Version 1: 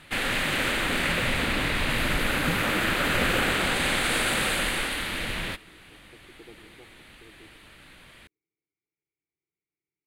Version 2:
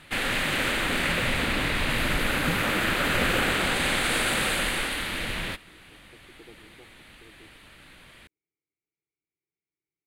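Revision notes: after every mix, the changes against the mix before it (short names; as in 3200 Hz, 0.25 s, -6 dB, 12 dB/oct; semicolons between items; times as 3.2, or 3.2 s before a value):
speech: send -6.0 dB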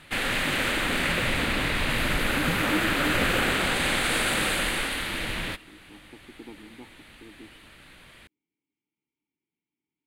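speech: remove fixed phaser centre 930 Hz, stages 6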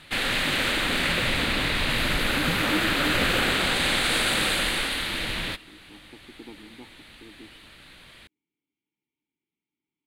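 master: add bell 4000 Hz +6 dB 0.74 oct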